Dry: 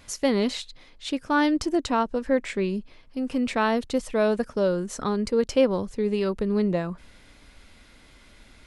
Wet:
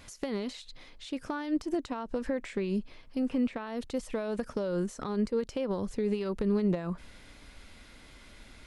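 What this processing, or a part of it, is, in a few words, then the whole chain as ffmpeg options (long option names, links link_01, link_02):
de-esser from a sidechain: -filter_complex "[0:a]asplit=2[link_01][link_02];[link_02]highpass=frequency=4300:poles=1,apad=whole_len=382324[link_03];[link_01][link_03]sidechaincompress=threshold=-44dB:ratio=8:attack=1.1:release=80,asettb=1/sr,asplit=3[link_04][link_05][link_06];[link_04]atrim=end=3.224[link_07];[link_05]atrim=start=3.22:end=3.67,asetpts=PTS-STARTPTS,afade=type=in:duration=0.004:curve=qsin,afade=type=out:start_time=0.446:duration=0.004:curve=qsin,acrossover=split=3300[link_08][link_09];[link_09]acompressor=threshold=-60dB:ratio=4:attack=1:release=60[link_10];[link_08][link_10]amix=inputs=2:normalize=0[link_11];[link_06]atrim=start=3.666[link_12];[link_07][link_11]acrossfade=duration=0.004:curve1=hsin:curve2=qsin[link_13];[link_13][link_12]acrossfade=duration=0.004:curve1=qsin:curve2=hsin"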